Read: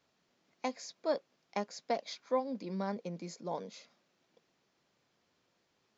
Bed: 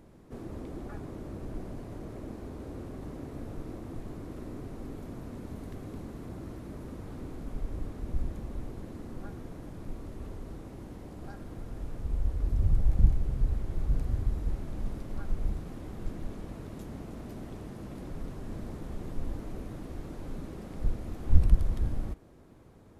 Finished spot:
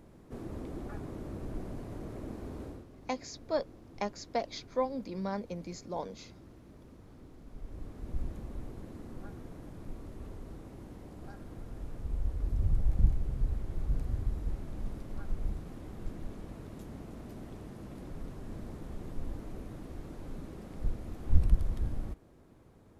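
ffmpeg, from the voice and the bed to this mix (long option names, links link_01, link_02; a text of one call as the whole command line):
ffmpeg -i stem1.wav -i stem2.wav -filter_complex "[0:a]adelay=2450,volume=1dB[link_01];[1:a]volume=8dB,afade=type=out:start_time=2.63:duration=0.22:silence=0.266073,afade=type=in:start_time=7.47:duration=0.77:silence=0.375837[link_02];[link_01][link_02]amix=inputs=2:normalize=0" out.wav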